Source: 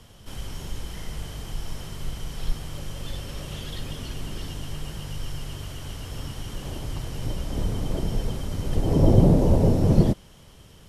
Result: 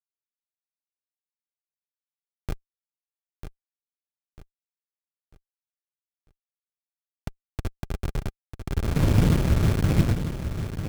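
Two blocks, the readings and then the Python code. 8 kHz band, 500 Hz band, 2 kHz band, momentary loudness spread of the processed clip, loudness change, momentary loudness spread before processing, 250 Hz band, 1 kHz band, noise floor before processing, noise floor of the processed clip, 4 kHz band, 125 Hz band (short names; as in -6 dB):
-4.0 dB, -7.5 dB, +2.5 dB, 20 LU, +2.0 dB, 18 LU, -4.5 dB, -3.0 dB, -49 dBFS, under -85 dBFS, -5.5 dB, -2.0 dB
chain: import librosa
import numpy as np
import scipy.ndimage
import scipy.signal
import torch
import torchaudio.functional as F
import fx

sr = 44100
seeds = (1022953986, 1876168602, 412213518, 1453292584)

p1 = fx.delta_hold(x, sr, step_db=-17.0)
p2 = fx.peak_eq(p1, sr, hz=730.0, db=-7.0, octaves=0.98)
p3 = fx.notch_comb(p2, sr, f0_hz=400.0)
p4 = p3 + fx.echo_feedback(p3, sr, ms=946, feedback_pct=37, wet_db=-9, dry=0)
y = fx.running_max(p4, sr, window=65)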